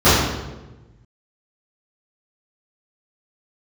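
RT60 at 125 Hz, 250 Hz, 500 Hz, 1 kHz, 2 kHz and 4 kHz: 1.8, 1.4, 1.3, 1.0, 0.90, 0.80 s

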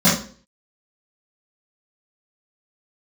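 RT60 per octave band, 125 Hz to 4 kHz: 0.40, 0.50, 0.50, 0.40, 0.40, 0.40 s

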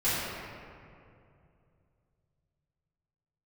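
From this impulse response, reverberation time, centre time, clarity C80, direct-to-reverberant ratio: 2.5 s, 0.153 s, -1.0 dB, -14.0 dB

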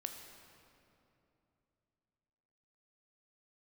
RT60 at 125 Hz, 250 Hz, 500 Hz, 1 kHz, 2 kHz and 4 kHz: 3.6, 3.4, 3.1, 2.7, 2.2, 1.8 s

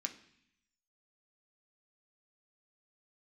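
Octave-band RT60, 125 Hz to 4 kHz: 1.0, 0.95, 0.60, 0.70, 0.95, 0.90 s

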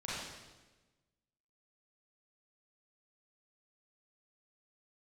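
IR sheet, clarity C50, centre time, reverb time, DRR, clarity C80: -4.0 dB, 99 ms, 1.2 s, -9.0 dB, 0.0 dB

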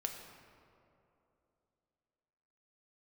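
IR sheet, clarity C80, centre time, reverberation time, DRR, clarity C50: 6.5 dB, 50 ms, 2.9 s, 2.5 dB, 5.5 dB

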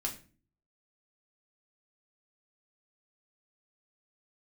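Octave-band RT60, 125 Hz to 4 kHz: 0.70, 0.65, 0.45, 0.35, 0.35, 0.30 s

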